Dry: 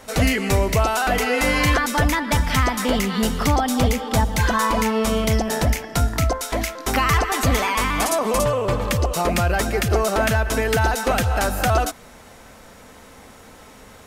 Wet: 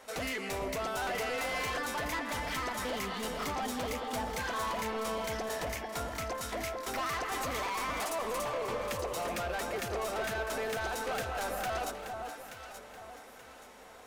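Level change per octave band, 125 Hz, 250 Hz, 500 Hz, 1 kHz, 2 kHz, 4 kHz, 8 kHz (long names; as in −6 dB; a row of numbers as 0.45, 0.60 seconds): −24.0, −18.5, −13.0, −12.5, −13.0, −12.5, −14.0 decibels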